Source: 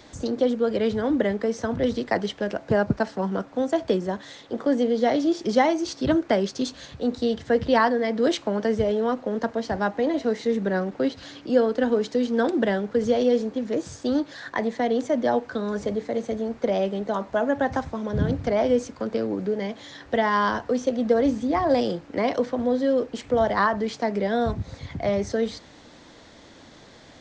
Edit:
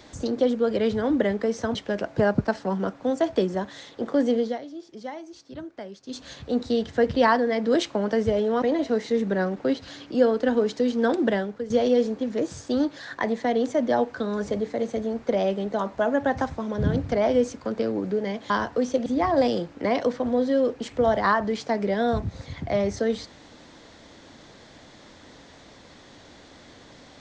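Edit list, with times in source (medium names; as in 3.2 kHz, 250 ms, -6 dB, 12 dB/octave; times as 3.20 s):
1.75–2.27 s: delete
4.90–6.79 s: dip -16.5 dB, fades 0.21 s
9.14–9.97 s: delete
12.64–13.05 s: fade out, to -13.5 dB
19.85–20.43 s: delete
20.99–21.39 s: delete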